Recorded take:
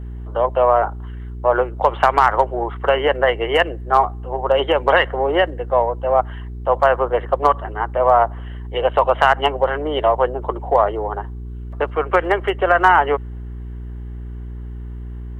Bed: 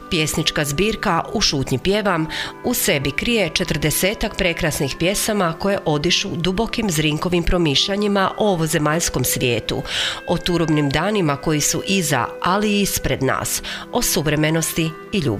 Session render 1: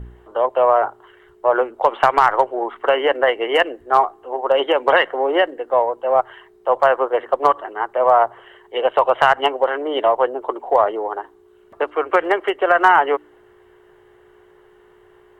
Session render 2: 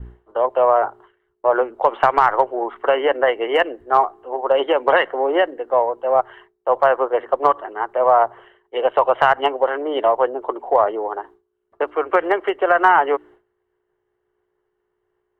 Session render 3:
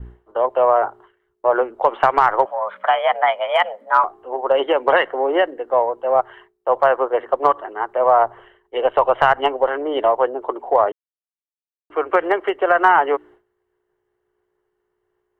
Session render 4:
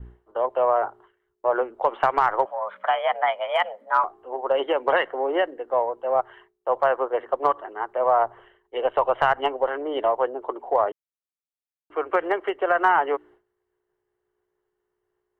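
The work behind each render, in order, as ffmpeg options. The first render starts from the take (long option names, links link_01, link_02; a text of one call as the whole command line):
ffmpeg -i in.wav -af "bandreject=frequency=60:width_type=h:width=4,bandreject=frequency=120:width_type=h:width=4,bandreject=frequency=180:width_type=h:width=4,bandreject=frequency=240:width_type=h:width=4,bandreject=frequency=300:width_type=h:width=4" out.wav
ffmpeg -i in.wav -af "agate=range=-33dB:threshold=-37dB:ratio=3:detection=peak,highshelf=frequency=3500:gain=-10" out.wav
ffmpeg -i in.wav -filter_complex "[0:a]asettb=1/sr,asplit=3[link_01][link_02][link_03];[link_01]atrim=end=2.454[link_04];[link_02]atrim=start=2.45:end=4.04,asetpts=PTS-STARTPTS,afade=type=in:duration=0.004:curve=qsin,afade=type=out:start_time=1.586:duration=0.004:curve=qsin,afreqshift=190[link_05];[link_03]atrim=start=4.036[link_06];[link_04][link_05]acrossfade=duration=0.004:curve1=hsin:curve2=qsin[link_07];[link_07][link_06]acrossfade=duration=0.004:curve1=qsin:curve2=hsin,asettb=1/sr,asplit=3[link_08][link_09][link_10];[link_08]atrim=end=8.194[link_11];[link_09]atrim=start=8.19:end=10.07,asetpts=PTS-STARTPTS,afade=type=in:duration=0.004:curve=qsin,afade=type=out:start_time=1.876:duration=0.004:curve=qsin,lowshelf=frequency=89:gain=10.5[link_12];[link_10]atrim=start=10.066[link_13];[link_11][link_12]acrossfade=duration=0.004:curve1=hsin:curve2=qsin[link_14];[link_14][link_13]acrossfade=duration=0.004:curve1=qsin:curve2=hsin,asplit=3[link_15][link_16][link_17];[link_15]atrim=end=10.92,asetpts=PTS-STARTPTS,afade=type=out:start_time=10.916:duration=0.004:curve=hsin[link_18];[link_16]atrim=start=10.92:end=11.9,asetpts=PTS-STARTPTS,volume=0[link_19];[link_17]atrim=start=11.9,asetpts=PTS-STARTPTS,afade=type=in:duration=0.004:curve=hsin[link_20];[link_18][link_19][link_20]concat=n=3:v=0:a=1" out.wav
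ffmpeg -i in.wav -af "volume=-5.5dB" out.wav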